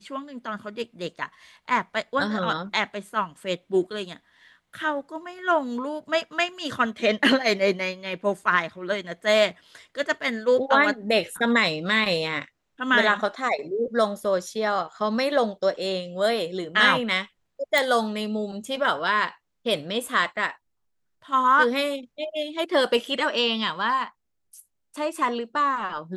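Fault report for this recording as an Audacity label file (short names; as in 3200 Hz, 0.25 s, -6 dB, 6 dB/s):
11.370000	11.370000	gap 3.4 ms
17.780000	17.780000	pop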